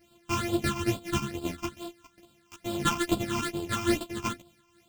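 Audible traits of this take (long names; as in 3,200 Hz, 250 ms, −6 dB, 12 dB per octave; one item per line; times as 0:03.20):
a buzz of ramps at a fixed pitch in blocks of 128 samples
phaser sweep stages 8, 2.3 Hz, lowest notch 520–1,900 Hz
tremolo triangle 3.6 Hz, depth 55%
a shimmering, thickened sound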